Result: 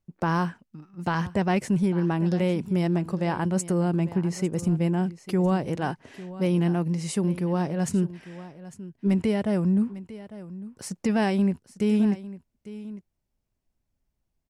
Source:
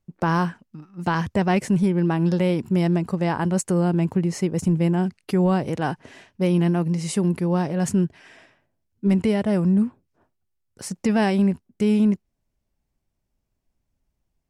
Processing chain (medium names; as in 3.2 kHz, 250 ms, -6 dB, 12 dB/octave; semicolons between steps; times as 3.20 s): delay 851 ms -16 dB; trim -3.5 dB